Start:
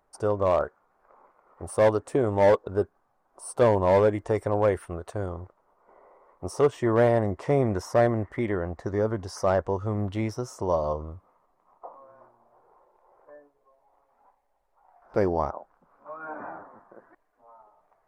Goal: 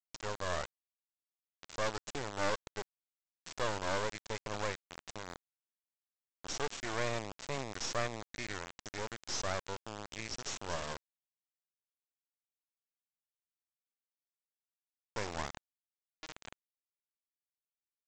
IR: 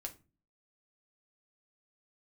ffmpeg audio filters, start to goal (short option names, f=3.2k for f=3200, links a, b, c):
-af "aderivative,aresample=16000,acrusher=bits=5:dc=4:mix=0:aa=0.000001,aresample=44100,asoftclip=type=tanh:threshold=-29dB,volume=10.5dB"